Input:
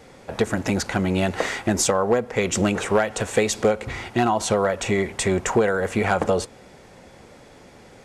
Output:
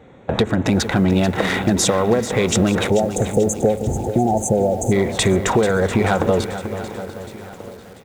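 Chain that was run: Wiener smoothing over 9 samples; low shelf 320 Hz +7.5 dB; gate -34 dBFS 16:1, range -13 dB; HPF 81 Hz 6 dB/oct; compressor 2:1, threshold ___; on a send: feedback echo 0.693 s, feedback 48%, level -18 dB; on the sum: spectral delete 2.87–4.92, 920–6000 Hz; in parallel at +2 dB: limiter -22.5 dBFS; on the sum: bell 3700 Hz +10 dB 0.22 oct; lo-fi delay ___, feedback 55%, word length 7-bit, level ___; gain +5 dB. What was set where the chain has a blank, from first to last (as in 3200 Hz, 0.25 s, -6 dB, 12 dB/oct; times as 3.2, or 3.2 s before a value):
-30 dBFS, 0.438 s, -11.5 dB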